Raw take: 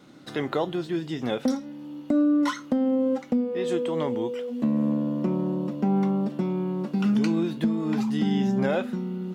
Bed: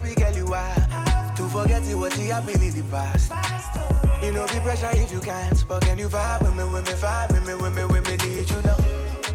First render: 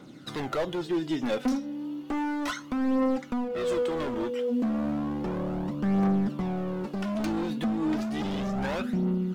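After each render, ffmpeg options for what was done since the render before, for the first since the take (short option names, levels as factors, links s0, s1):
-af "volume=21.1,asoftclip=hard,volume=0.0473,aphaser=in_gain=1:out_gain=1:delay=4.2:decay=0.46:speed=0.33:type=triangular"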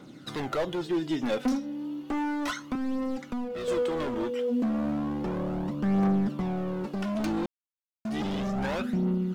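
-filter_complex "[0:a]asettb=1/sr,asplit=3[s0][s1][s2];[s0]atrim=end=2.754[s3];[s1]atrim=start=2.75:end=3.68,asetpts=PTS-STARTPTS,afade=t=in:d=0.004:c=qsin,afade=t=out:st=0.926:d=0.004:c=qsin,acrossover=split=200|3000[s4][s5][s6];[s5]acompressor=threshold=0.02:ratio=3:attack=3.2:release=140:knee=2.83:detection=peak[s7];[s4][s7][s6]amix=inputs=3:normalize=0[s8];[s2]atrim=start=3.676[s9];[s3][s8]acrossfade=d=0.004:c1=hsin:c2=qsin[s10];[s10][s9]acrossfade=d=0.004:c1=qsin:c2=hsin,asplit=3[s11][s12][s13];[s11]atrim=end=7.46,asetpts=PTS-STARTPTS,afade=t=out:st=7.456:d=0.004:c=hsin[s14];[s12]atrim=start=7.46:end=8.05,asetpts=PTS-STARTPTS,volume=0[s15];[s13]atrim=start=8.05,asetpts=PTS-STARTPTS,afade=t=in:d=0.004:c=hsin[s16];[s14][s15][s16]concat=n=3:v=0:a=1"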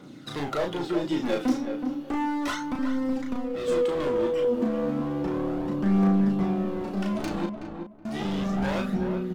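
-filter_complex "[0:a]asplit=2[s0][s1];[s1]adelay=35,volume=0.668[s2];[s0][s2]amix=inputs=2:normalize=0,asplit=2[s3][s4];[s4]adelay=373,lowpass=f=1400:p=1,volume=0.501,asplit=2[s5][s6];[s6]adelay=373,lowpass=f=1400:p=1,volume=0.23,asplit=2[s7][s8];[s8]adelay=373,lowpass=f=1400:p=1,volume=0.23[s9];[s3][s5][s7][s9]amix=inputs=4:normalize=0"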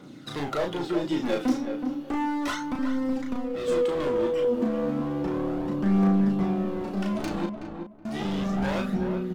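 -af anull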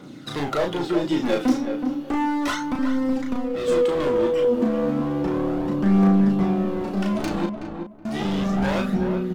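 -af "volume=1.68"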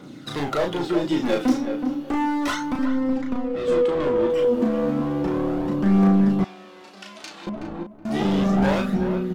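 -filter_complex "[0:a]asettb=1/sr,asplit=3[s0][s1][s2];[s0]atrim=end=2.854[s3];[s1]atrim=start=2.85:end=4.3,asetpts=PTS-STARTPTS,afade=t=in:d=0.004:c=qsin,afade=t=out:st=1.446:d=0.004:c=qsin,highshelf=f=5000:g=-11.5[s4];[s2]atrim=start=4.296[s5];[s3][s4]acrossfade=d=0.004:c1=hsin:c2=qsin[s6];[s6][s5]acrossfade=d=0.004:c1=qsin:c2=hsin,asettb=1/sr,asplit=3[s7][s8][s9];[s7]atrim=end=6.444[s10];[s8]atrim=start=6.44:end=7.47,asetpts=PTS-STARTPTS,afade=t=in:d=0.004:c=qsin,afade=t=out:st=1.026:d=0.004:c=qsin,bandpass=f=4800:t=q:w=0.73[s11];[s9]atrim=start=7.466[s12];[s10][s11]acrossfade=d=0.004:c1=hsin:c2=qsin[s13];[s13][s12]acrossfade=d=0.004:c1=qsin:c2=hsin,asettb=1/sr,asplit=3[s14][s15][s16];[s14]atrim=end=8.104[s17];[s15]atrim=start=8.1:end=8.75,asetpts=PTS-STARTPTS,afade=t=in:d=0.004:c=qsin,afade=t=out:st=0.646:d=0.004:c=qsin,equalizer=f=390:w=0.45:g=4.5[s18];[s16]atrim=start=8.746[s19];[s17][s18]acrossfade=d=0.004:c1=hsin:c2=qsin[s20];[s20][s19]acrossfade=d=0.004:c1=qsin:c2=hsin"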